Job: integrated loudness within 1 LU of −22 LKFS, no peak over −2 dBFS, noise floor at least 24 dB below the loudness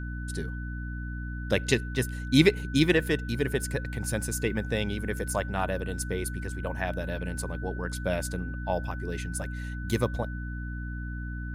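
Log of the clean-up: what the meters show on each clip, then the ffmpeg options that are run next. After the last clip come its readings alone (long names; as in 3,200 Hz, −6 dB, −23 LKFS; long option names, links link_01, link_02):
mains hum 60 Hz; hum harmonics up to 300 Hz; level of the hum −33 dBFS; interfering tone 1,500 Hz; level of the tone −42 dBFS; integrated loudness −30.0 LKFS; sample peak −5.5 dBFS; target loudness −22.0 LKFS
→ -af "bandreject=frequency=60:width_type=h:width=4,bandreject=frequency=120:width_type=h:width=4,bandreject=frequency=180:width_type=h:width=4,bandreject=frequency=240:width_type=h:width=4,bandreject=frequency=300:width_type=h:width=4"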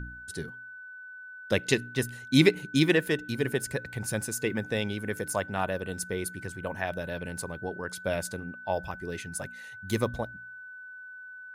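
mains hum none found; interfering tone 1,500 Hz; level of the tone −42 dBFS
→ -af "bandreject=frequency=1500:width=30"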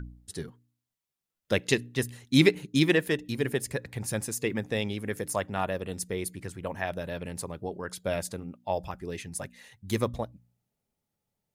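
interfering tone none found; integrated loudness −30.0 LKFS; sample peak −6.0 dBFS; target loudness −22.0 LKFS
→ -af "volume=8dB,alimiter=limit=-2dB:level=0:latency=1"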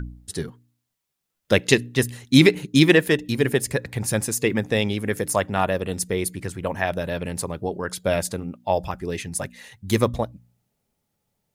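integrated loudness −22.5 LKFS; sample peak −2.0 dBFS; background noise floor −80 dBFS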